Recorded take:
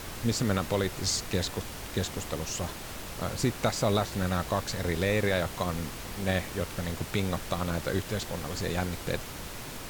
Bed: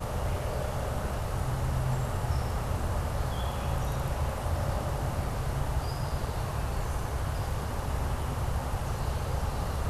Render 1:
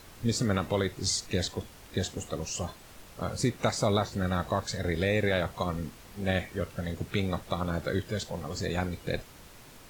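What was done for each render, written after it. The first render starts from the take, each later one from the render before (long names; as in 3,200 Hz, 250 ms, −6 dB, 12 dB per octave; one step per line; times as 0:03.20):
noise reduction from a noise print 11 dB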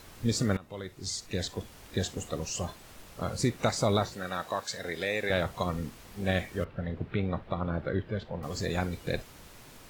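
0:00.57–0:01.80: fade in, from −20.5 dB
0:04.13–0:05.30: high-pass filter 620 Hz 6 dB per octave
0:06.64–0:08.43: high-frequency loss of the air 400 metres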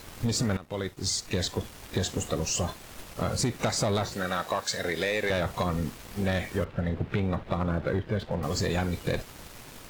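leveller curve on the samples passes 2
downward compressor, threshold −24 dBFS, peak gain reduction 5.5 dB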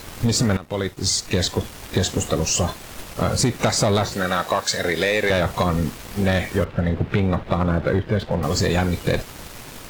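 level +8 dB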